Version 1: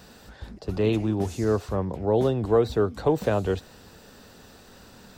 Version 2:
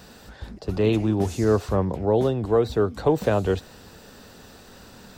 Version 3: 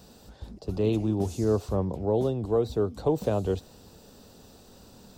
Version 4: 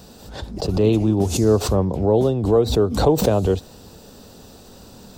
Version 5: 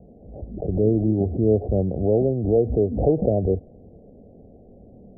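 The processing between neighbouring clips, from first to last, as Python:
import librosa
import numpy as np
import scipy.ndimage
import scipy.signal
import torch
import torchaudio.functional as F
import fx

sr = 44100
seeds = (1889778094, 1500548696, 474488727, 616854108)

y1 = fx.rider(x, sr, range_db=10, speed_s=0.5)
y1 = y1 * librosa.db_to_amplitude(2.5)
y2 = fx.peak_eq(y1, sr, hz=1800.0, db=-11.5, octaves=1.2)
y2 = y2 * librosa.db_to_amplitude(-4.0)
y3 = fx.pre_swell(y2, sr, db_per_s=78.0)
y3 = y3 * librosa.db_to_amplitude(8.0)
y4 = scipy.signal.sosfilt(scipy.signal.butter(12, 720.0, 'lowpass', fs=sr, output='sos'), y3)
y4 = y4 * librosa.db_to_amplitude(-2.5)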